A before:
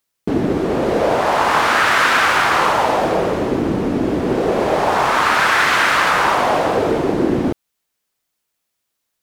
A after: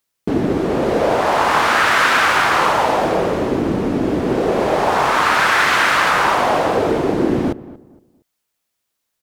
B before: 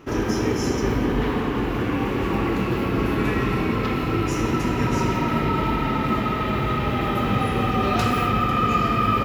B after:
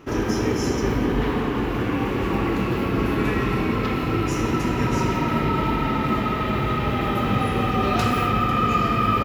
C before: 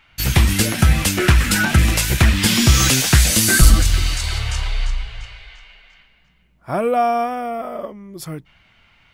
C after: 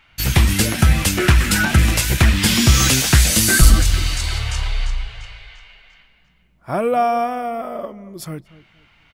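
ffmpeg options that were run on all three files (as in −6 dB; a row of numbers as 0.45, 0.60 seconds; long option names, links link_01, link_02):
-filter_complex "[0:a]asplit=2[link_01][link_02];[link_02]adelay=232,lowpass=frequency=1200:poles=1,volume=-17dB,asplit=2[link_03][link_04];[link_04]adelay=232,lowpass=frequency=1200:poles=1,volume=0.3,asplit=2[link_05][link_06];[link_06]adelay=232,lowpass=frequency=1200:poles=1,volume=0.3[link_07];[link_01][link_03][link_05][link_07]amix=inputs=4:normalize=0"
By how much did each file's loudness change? 0.0, 0.0, 0.0 LU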